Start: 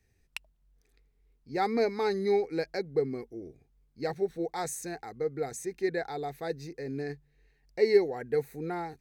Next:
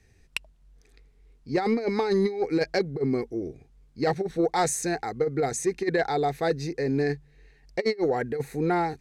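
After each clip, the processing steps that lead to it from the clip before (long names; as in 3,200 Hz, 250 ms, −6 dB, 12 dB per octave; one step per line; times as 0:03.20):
low-pass filter 9,300 Hz 12 dB per octave
compressor whose output falls as the input rises −30 dBFS, ratio −0.5
sine wavefolder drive 4 dB, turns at −14 dBFS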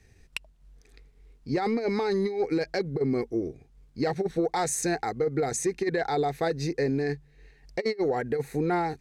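brickwall limiter −21.5 dBFS, peak gain reduction 7.5 dB
transient designer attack +2 dB, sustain −3 dB
level +2 dB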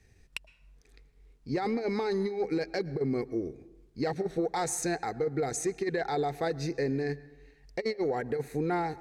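convolution reverb RT60 1.0 s, pre-delay 102 ms, DRR 18.5 dB
level −3.5 dB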